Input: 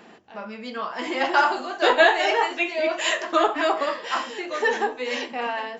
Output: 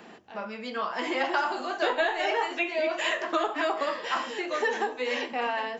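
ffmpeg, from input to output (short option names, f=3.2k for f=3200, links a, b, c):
-filter_complex "[0:a]acrossover=split=280|3200[a][b][c];[a]acompressor=threshold=-45dB:ratio=4[d];[b]acompressor=threshold=-25dB:ratio=4[e];[c]acompressor=threshold=-44dB:ratio=4[f];[d][e][f]amix=inputs=3:normalize=0"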